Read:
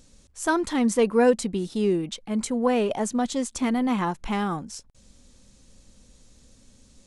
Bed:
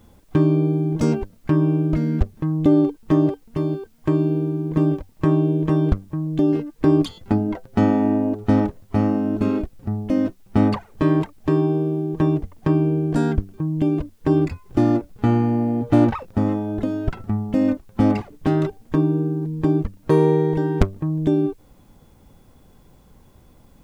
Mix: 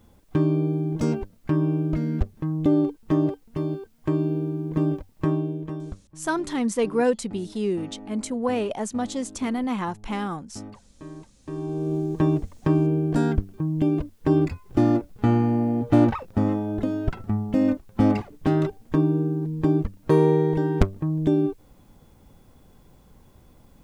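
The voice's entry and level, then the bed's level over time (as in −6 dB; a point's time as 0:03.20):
5.80 s, −2.5 dB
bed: 0:05.24 −4.5 dB
0:06.19 −22.5 dB
0:11.29 −22.5 dB
0:11.94 −2 dB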